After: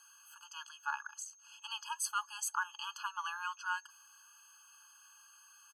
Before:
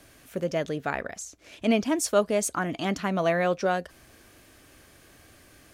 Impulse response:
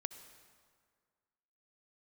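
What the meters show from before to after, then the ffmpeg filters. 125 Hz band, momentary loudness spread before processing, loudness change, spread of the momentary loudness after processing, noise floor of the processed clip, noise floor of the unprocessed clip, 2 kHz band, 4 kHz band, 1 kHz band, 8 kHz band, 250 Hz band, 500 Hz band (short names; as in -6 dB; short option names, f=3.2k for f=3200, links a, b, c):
under -40 dB, 11 LU, -12.5 dB, 22 LU, -62 dBFS, -55 dBFS, -7.0 dB, -5.5 dB, -8.0 dB, -7.0 dB, under -40 dB, under -40 dB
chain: -af "aecho=1:1:3.5:0.32,aeval=exprs='val(0)+0.00158*sin(2*PI*6400*n/s)':c=same,afftfilt=real='re*eq(mod(floor(b*sr/1024/840),2),1)':imag='im*eq(mod(floor(b*sr/1024/840),2),1)':win_size=1024:overlap=0.75,volume=-4.5dB"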